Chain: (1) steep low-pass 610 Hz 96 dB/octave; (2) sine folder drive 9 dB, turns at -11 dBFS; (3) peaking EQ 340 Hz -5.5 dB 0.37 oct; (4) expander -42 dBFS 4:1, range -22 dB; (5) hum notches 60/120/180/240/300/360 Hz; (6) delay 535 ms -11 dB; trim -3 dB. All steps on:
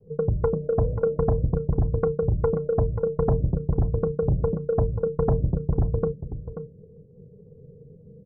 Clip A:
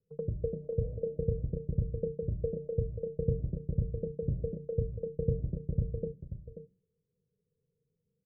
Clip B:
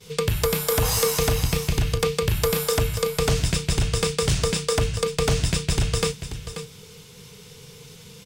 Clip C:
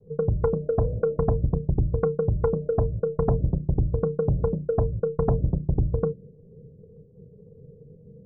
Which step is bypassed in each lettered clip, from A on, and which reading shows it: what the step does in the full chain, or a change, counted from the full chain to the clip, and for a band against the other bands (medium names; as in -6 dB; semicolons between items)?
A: 2, distortion -6 dB; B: 1, 1 kHz band +6.0 dB; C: 6, momentary loudness spread change -3 LU